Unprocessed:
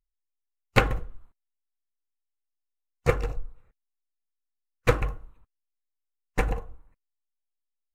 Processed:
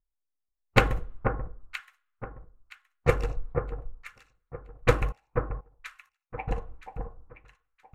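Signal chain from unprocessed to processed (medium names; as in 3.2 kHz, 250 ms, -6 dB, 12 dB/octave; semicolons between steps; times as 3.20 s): 5.12–6.48 s: two resonant band-passes 1.4 kHz, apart 1.5 oct; level-controlled noise filter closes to 1.1 kHz, open at -21 dBFS; echo whose repeats swap between lows and highs 485 ms, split 1.5 kHz, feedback 50%, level -6 dB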